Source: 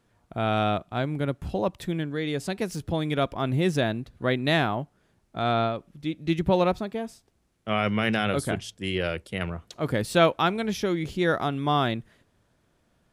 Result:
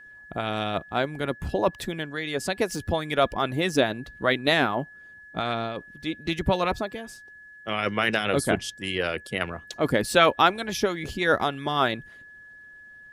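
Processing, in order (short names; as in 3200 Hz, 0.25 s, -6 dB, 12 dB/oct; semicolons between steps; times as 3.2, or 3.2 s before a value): harmonic-percussive split harmonic -13 dB; whine 1700 Hz -51 dBFS; gain +6 dB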